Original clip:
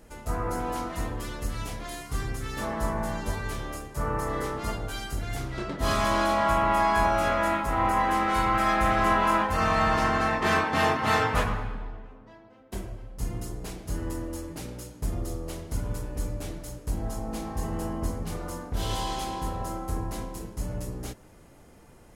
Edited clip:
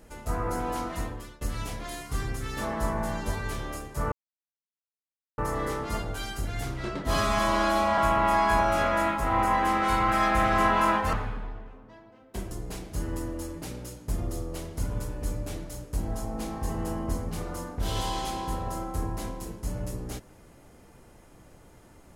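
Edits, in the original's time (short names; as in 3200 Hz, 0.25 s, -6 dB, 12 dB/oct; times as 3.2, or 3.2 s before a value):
0.95–1.41 fade out, to -22 dB
4.12 insert silence 1.26 s
5.88–6.44 stretch 1.5×
9.59–11.51 cut
12.89–13.45 cut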